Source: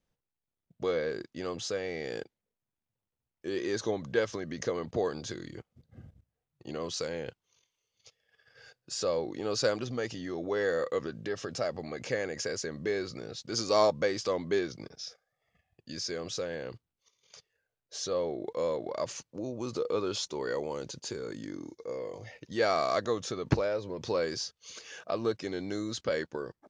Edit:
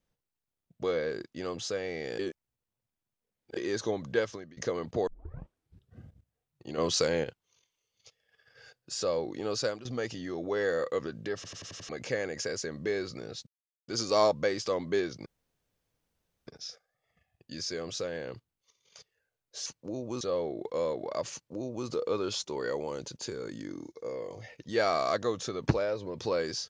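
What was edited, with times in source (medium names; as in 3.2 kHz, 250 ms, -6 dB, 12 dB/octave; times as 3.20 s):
2.19–3.57 s: reverse
4.18–4.57 s: fade out, to -23.5 dB
5.07 s: tape start 0.93 s
6.78–7.24 s: gain +7.5 dB
9.40–9.85 s: fade out equal-power, to -14.5 dB
11.35 s: stutter in place 0.09 s, 6 plays
13.47 s: insert silence 0.41 s
14.85 s: insert room tone 1.21 s
19.16–19.71 s: copy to 18.04 s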